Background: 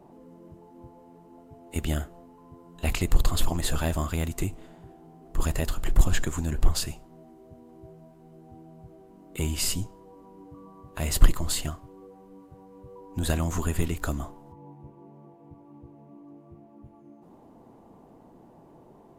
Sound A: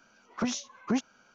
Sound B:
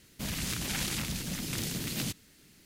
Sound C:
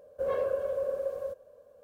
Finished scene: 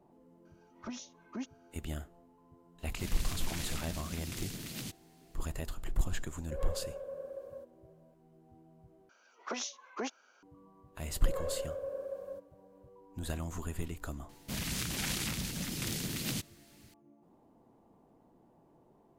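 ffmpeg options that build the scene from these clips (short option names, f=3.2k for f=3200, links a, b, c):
-filter_complex "[1:a]asplit=2[a][b];[2:a]asplit=2[c][d];[3:a]asplit=2[e][f];[0:a]volume=-11.5dB[g];[a]aecho=1:1:3.2:0.55[h];[b]highpass=f=340:w=0.5412,highpass=f=340:w=1.3066[i];[g]asplit=2[j][k];[j]atrim=end=9.094[l];[i]atrim=end=1.34,asetpts=PTS-STARTPTS,volume=-3dB[m];[k]atrim=start=10.426[n];[h]atrim=end=1.34,asetpts=PTS-STARTPTS,volume=-13.5dB,afade=t=in:d=0.004:c=hsin,afade=t=out:st=1.336:d=0.004:c=hsin,adelay=450[o];[c]atrim=end=2.65,asetpts=PTS-STARTPTS,volume=-8dB,afade=t=in:d=0.004:c=hsin,afade=t=out:st=2.646:d=0.004:c=hsin,adelay=2790[p];[e]atrim=end=1.83,asetpts=PTS-STARTPTS,volume=-11.5dB,afade=t=in:d=0.004:c=hsin,afade=t=out:st=1.826:d=0.004:c=hsin,adelay=6310[q];[f]atrim=end=1.83,asetpts=PTS-STARTPTS,volume=-8dB,afade=t=in:d=0.004:c=hsin,afade=t=out:st=1.826:d=0.004:c=hsin,adelay=487746S[r];[d]atrim=end=2.65,asetpts=PTS-STARTPTS,volume=-2dB,afade=t=in:d=0.004:c=hsin,afade=t=out:st=2.646:d=0.004:c=hsin,adelay=14290[s];[l][m]acrossfade=d=0.004:c1=hsin:c2=hsin[t];[t][n]acrossfade=d=0.004:c1=hsin:c2=hsin[u];[u][o][p][q][r][s]amix=inputs=6:normalize=0"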